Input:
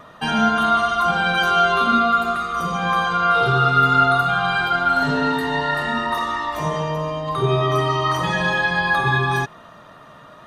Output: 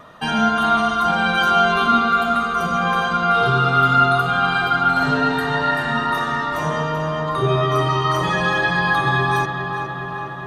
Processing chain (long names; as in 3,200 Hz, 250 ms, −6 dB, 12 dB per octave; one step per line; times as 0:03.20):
feedback echo with a low-pass in the loop 413 ms, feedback 73%, low-pass 4,000 Hz, level −8 dB